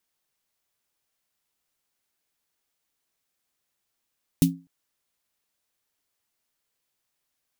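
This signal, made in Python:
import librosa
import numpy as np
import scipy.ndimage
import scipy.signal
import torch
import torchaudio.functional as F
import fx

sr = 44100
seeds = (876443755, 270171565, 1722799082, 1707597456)

y = fx.drum_snare(sr, seeds[0], length_s=0.25, hz=170.0, second_hz=270.0, noise_db=-9, noise_from_hz=2800.0, decay_s=0.3, noise_decay_s=0.13)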